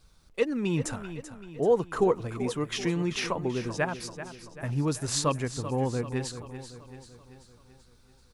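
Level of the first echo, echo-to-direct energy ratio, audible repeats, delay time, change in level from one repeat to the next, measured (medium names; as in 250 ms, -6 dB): -12.0 dB, -10.5 dB, 5, 386 ms, -5.5 dB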